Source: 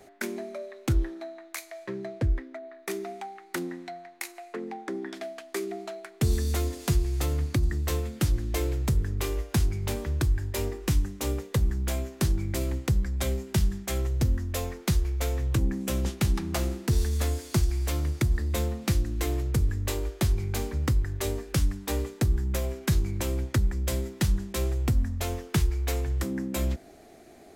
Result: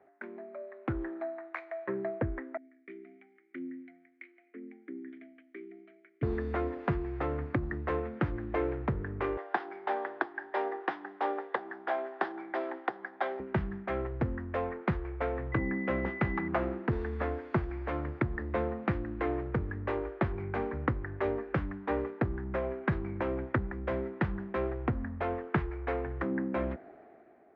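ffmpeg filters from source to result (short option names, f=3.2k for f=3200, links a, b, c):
-filter_complex "[0:a]asettb=1/sr,asplit=3[a][b][c];[a]atrim=end=2.574[d];[b]atrim=start=2.57:end=6.23,asetpts=PTS-STARTPTS,afade=t=in:d=0.004:c=qsin,afade=t=out:st=3.656:d=0.004:c=qsin,asplit=3[e][f][g];[e]bandpass=f=270:t=q:w=8,volume=0dB[h];[f]bandpass=f=2.29k:t=q:w=8,volume=-6dB[i];[g]bandpass=f=3.01k:t=q:w=8,volume=-9dB[j];[h][i][j]amix=inputs=3:normalize=0[k];[c]atrim=start=6.226[l];[d][k]acrossfade=d=0.004:c1=hsin:c2=qsin[m];[m][l]acrossfade=d=0.004:c1=qsin:c2=hsin,asettb=1/sr,asplit=3[n][o][p];[n]atrim=end=9.374[q];[o]atrim=start=9.37:end=13.4,asetpts=PTS-STARTPTS,afade=t=in:d=0.004:c=qsin,afade=t=out:st=4.026:d=0.004:c=qsin,highpass=f=360:w=0.5412,highpass=f=360:w=1.3066,equalizer=f=500:t=q:w=4:g=-7,equalizer=f=780:t=q:w=4:g=10,equalizer=f=1.7k:t=q:w=4:g=4,equalizer=f=2.4k:t=q:w=4:g=-4,equalizer=f=3.5k:t=q:w=4:g=7,equalizer=f=5k:t=q:w=4:g=7,lowpass=f=6.3k:w=0.5412,lowpass=f=6.3k:w=1.3066[r];[p]atrim=start=13.396[s];[q][r]acrossfade=d=0.004:c1=hsin:c2=qsin[t];[t][s]acrossfade=d=0.004:c1=qsin:c2=hsin,asettb=1/sr,asplit=3[u][v][w];[u]atrim=end=15.524[x];[v]atrim=start=15.52:end=16.48,asetpts=PTS-STARTPTS,afade=t=in:d=0.004:c=qsin,afade=t=out:st=0.956:d=0.004:c=qsin,aeval=exprs='val(0)+0.0112*sin(2*PI*2000*n/s)':c=same[y];[w]atrim=start=16.476[z];[x][y]acrossfade=d=0.004:c1=hsin:c2=qsin[aa];[aa][z]acrossfade=d=0.004:c1=qsin:c2=hsin,lowpass=f=1.8k:w=0.5412,lowpass=f=1.8k:w=1.3066,dynaudnorm=f=240:g=7:m=13.5dB,highpass=f=440:p=1,volume=-7.5dB"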